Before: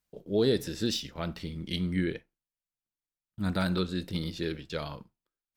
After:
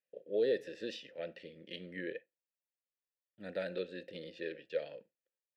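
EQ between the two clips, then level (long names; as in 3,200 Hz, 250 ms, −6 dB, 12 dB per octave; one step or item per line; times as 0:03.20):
formant filter e
high-pass filter 110 Hz 12 dB per octave
+5.0 dB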